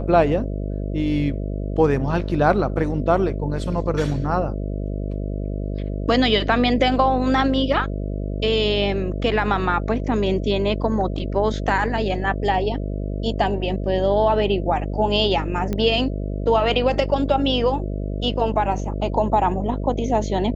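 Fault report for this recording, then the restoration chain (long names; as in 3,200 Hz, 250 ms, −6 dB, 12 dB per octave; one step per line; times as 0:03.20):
mains buzz 50 Hz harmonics 13 −26 dBFS
0:15.73: click −13 dBFS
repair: click removal
hum removal 50 Hz, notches 13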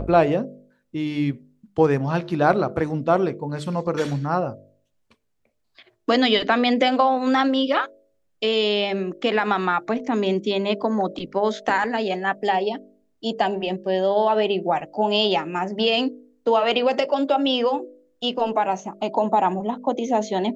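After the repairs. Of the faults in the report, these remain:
none of them is left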